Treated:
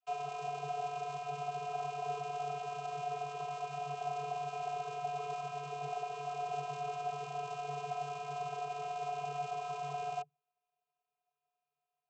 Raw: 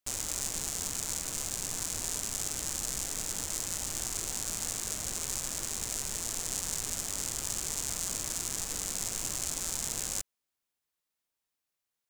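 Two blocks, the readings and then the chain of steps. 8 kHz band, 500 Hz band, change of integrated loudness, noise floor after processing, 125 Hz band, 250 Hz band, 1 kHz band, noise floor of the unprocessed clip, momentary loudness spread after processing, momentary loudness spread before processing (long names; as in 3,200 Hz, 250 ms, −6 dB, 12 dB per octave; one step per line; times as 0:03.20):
−28.0 dB, +7.5 dB, −7.0 dB, below −85 dBFS, −3.0 dB, can't be measured, +12.5 dB, below −85 dBFS, 2 LU, 1 LU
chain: channel vocoder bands 32, square 144 Hz
formant filter a
level +13.5 dB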